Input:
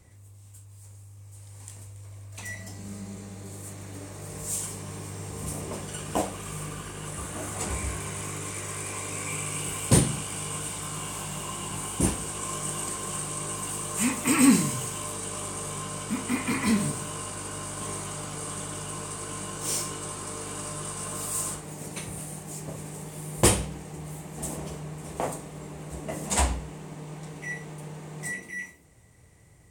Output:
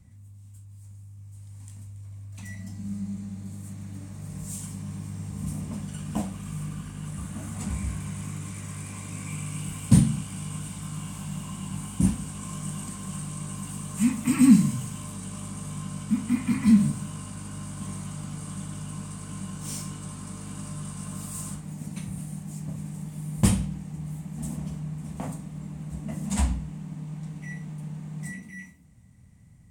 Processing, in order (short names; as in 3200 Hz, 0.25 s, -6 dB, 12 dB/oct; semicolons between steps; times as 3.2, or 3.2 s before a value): resonant low shelf 290 Hz +9 dB, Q 3; gain -7.5 dB